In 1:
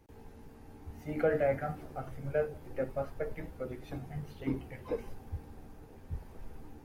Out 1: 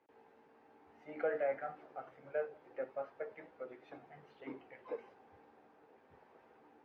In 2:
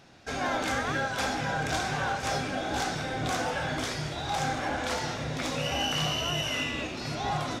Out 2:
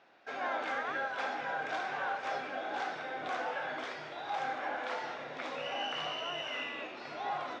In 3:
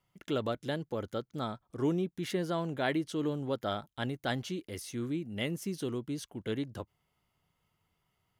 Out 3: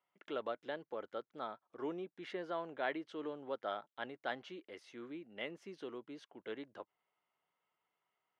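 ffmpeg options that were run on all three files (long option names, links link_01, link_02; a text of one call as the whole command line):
ffmpeg -i in.wav -af "highpass=470,lowpass=2500,volume=-4dB" out.wav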